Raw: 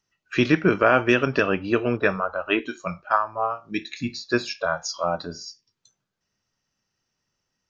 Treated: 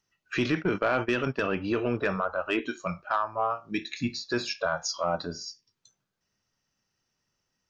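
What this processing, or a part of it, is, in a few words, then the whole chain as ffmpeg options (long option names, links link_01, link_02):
soft clipper into limiter: -filter_complex "[0:a]asplit=3[link_01][link_02][link_03];[link_01]afade=type=out:start_time=0.53:duration=0.02[link_04];[link_02]agate=range=-18dB:threshold=-22dB:ratio=16:detection=peak,afade=type=in:start_time=0.53:duration=0.02,afade=type=out:start_time=1.49:duration=0.02[link_05];[link_03]afade=type=in:start_time=1.49:duration=0.02[link_06];[link_04][link_05][link_06]amix=inputs=3:normalize=0,asoftclip=type=tanh:threshold=-9.5dB,alimiter=limit=-16.5dB:level=0:latency=1:release=29,volume=-1dB"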